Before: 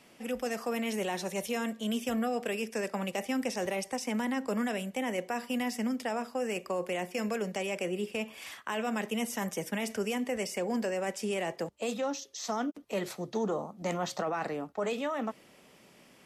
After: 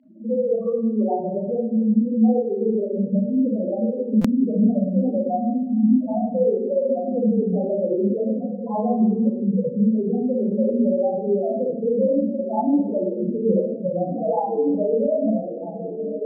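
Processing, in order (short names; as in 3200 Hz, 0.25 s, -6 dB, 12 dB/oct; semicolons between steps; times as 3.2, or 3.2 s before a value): spectral gate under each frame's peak -30 dB strong; in parallel at 0 dB: compressor, threshold -43 dBFS, peak gain reduction 15 dB; on the sum: polynomial smoothing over 65 samples; hard clip -27.5 dBFS, distortion -15 dB; diffused feedback echo 1.459 s, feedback 61%, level -4.5 dB; loudest bins only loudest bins 2; 4.47–5.04 doubler 31 ms -12.5 dB; reverb RT60 0.85 s, pre-delay 32 ms, DRR -3 dB; stuck buffer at 4.21, samples 256, times 5; gain +1 dB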